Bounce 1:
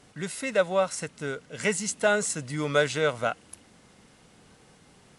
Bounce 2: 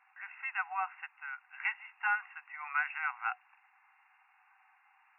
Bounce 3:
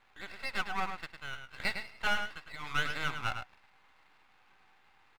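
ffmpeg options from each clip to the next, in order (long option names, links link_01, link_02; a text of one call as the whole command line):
ffmpeg -i in.wav -af "afftfilt=real='re*between(b*sr/4096,740,2800)':imag='im*between(b*sr/4096,740,2800)':win_size=4096:overlap=0.75,volume=-3.5dB" out.wav
ffmpeg -i in.wav -filter_complex "[0:a]aeval=exprs='max(val(0),0)':channel_layout=same,asplit=2[link_01][link_02];[link_02]adelay=105,volume=-7dB,highshelf=frequency=4000:gain=-2.36[link_03];[link_01][link_03]amix=inputs=2:normalize=0,volume=4.5dB" out.wav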